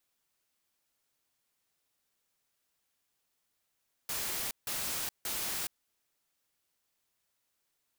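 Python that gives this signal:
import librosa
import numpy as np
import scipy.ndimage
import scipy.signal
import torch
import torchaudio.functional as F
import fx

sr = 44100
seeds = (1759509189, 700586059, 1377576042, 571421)

y = fx.noise_burst(sr, seeds[0], colour='white', on_s=0.42, off_s=0.16, bursts=3, level_db=-35.5)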